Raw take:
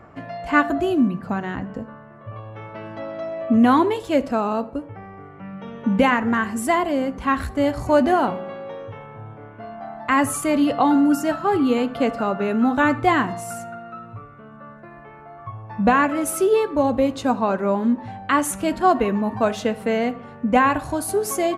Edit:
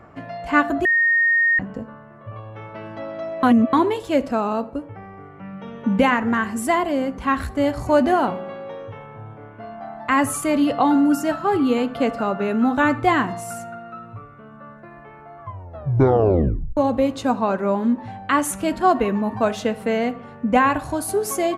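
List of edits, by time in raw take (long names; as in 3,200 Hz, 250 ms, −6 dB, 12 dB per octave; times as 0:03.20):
0:00.85–0:01.59: beep over 1,850 Hz −14 dBFS
0:03.43–0:03.73: reverse
0:15.41: tape stop 1.36 s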